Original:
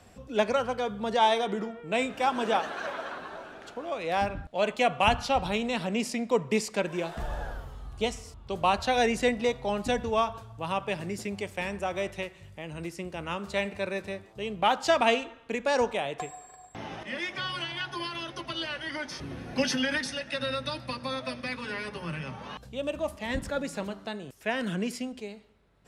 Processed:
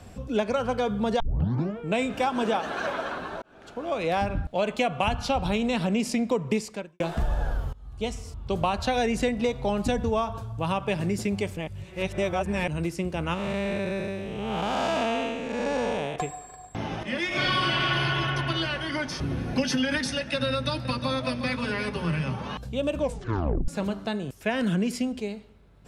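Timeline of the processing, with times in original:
1.20 s: tape start 0.57 s
3.42–3.97 s: fade in
6.57–7.00 s: fade out quadratic
7.73–8.58 s: fade in, from -23 dB
9.92–10.58 s: peaking EQ 2.5 kHz -3.5 dB 1.4 oct
11.57–12.68 s: reverse
13.34–16.16 s: spectral blur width 342 ms
17.27–17.94 s: reverb throw, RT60 2.9 s, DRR -11 dB
20.49–22.41 s: delay 358 ms -11 dB
22.97 s: tape stop 0.71 s
whole clip: bass shelf 250 Hz +8.5 dB; band-stop 1.9 kHz, Q 21; compression, threshold -26 dBFS; trim +4.5 dB

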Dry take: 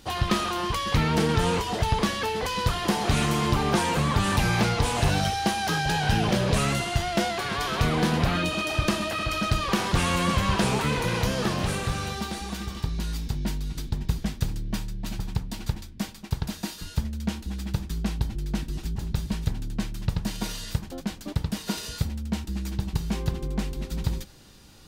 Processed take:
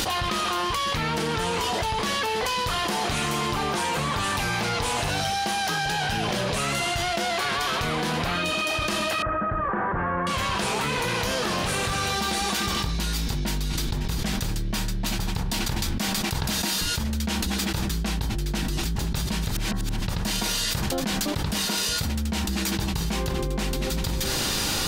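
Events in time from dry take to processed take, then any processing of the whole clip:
9.22–10.27 s: elliptic low-pass 1.7 kHz, stop band 80 dB
19.51–20.00 s: reverse
whole clip: bass shelf 340 Hz -9 dB; de-hum 64.77 Hz, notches 30; level flattener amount 100%; trim -2.5 dB

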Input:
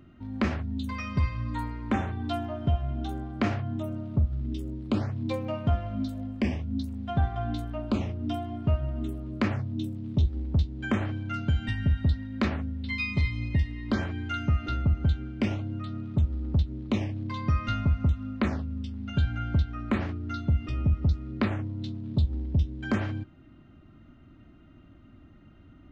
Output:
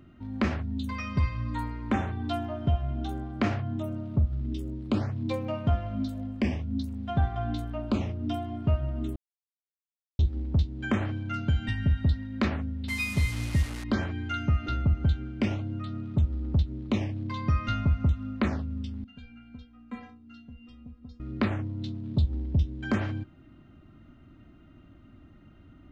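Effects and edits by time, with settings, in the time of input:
9.16–10.19 s: mute
12.88–13.84 s: one-bit delta coder 64 kbps, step -33.5 dBFS
19.04–21.20 s: inharmonic resonator 240 Hz, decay 0.31 s, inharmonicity 0.008

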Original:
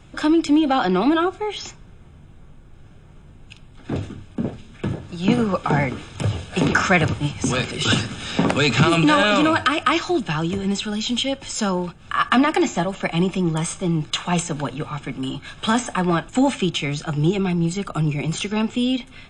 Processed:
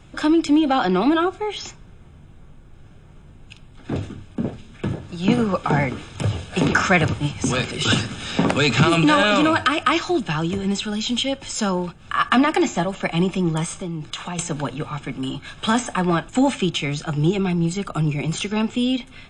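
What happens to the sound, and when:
13.64–14.39 s: compression, threshold -25 dBFS

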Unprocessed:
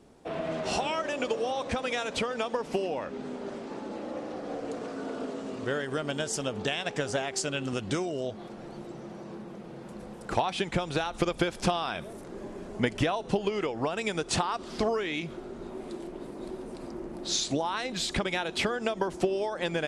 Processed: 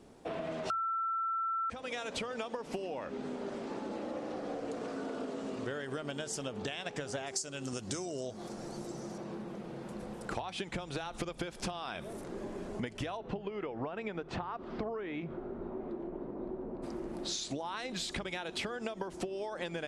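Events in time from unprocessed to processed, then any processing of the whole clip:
0.70–1.70 s: bleep 1.34 kHz -13.5 dBFS
7.26–9.18 s: resonant high shelf 4.3 kHz +9 dB, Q 1.5
13.16–16.82 s: low-pass 2.5 kHz -> 1 kHz
whole clip: compression, threshold -35 dBFS; de-hum 52.17 Hz, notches 3

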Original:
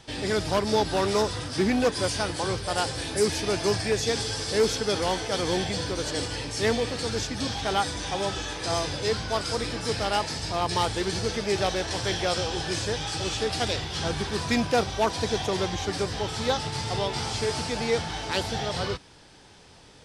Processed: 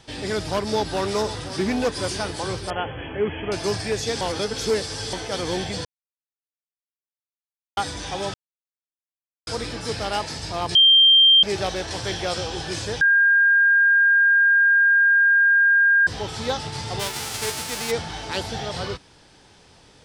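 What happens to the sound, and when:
0.72–1.66 s: echo throw 520 ms, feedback 65%, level -13 dB
2.70–3.52 s: brick-wall FIR low-pass 3.4 kHz
4.21–5.13 s: reverse
5.85–7.77 s: mute
8.34–9.47 s: mute
10.75–11.43 s: bleep 3.17 kHz -10 dBFS
13.01–16.07 s: bleep 1.61 kHz -13 dBFS
16.99–17.90 s: formants flattened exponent 0.3

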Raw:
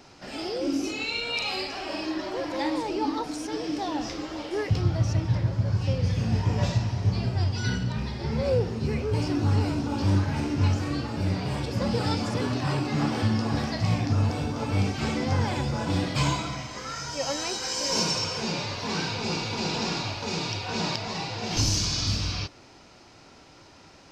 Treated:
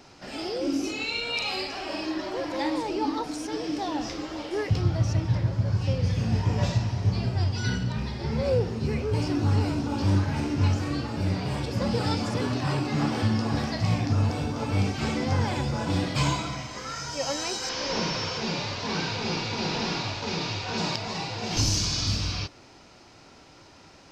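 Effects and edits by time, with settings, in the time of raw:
17.69–20.78 s: one-bit delta coder 32 kbps, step -31 dBFS

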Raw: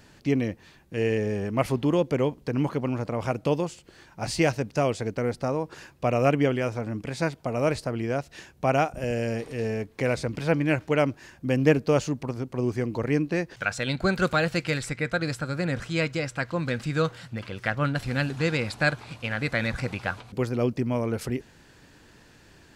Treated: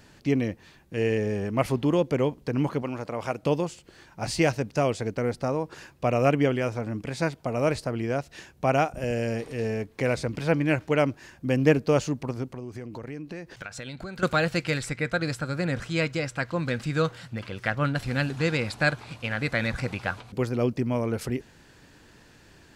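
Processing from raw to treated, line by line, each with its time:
2.82–3.43 s: bass shelf 260 Hz -9.5 dB
12.52–14.23 s: compression, threshold -34 dBFS

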